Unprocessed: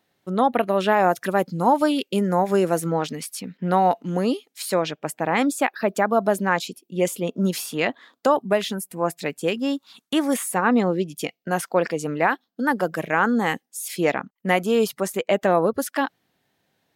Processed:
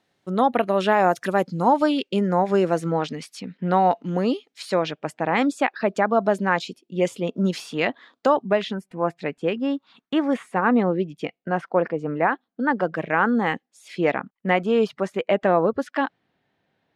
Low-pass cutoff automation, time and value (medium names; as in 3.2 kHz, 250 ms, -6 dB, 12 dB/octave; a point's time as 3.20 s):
1.30 s 8.7 kHz
2.01 s 4.9 kHz
8.36 s 4.9 kHz
8.93 s 2.4 kHz
11.38 s 2.4 kHz
11.92 s 1.4 kHz
12.86 s 3 kHz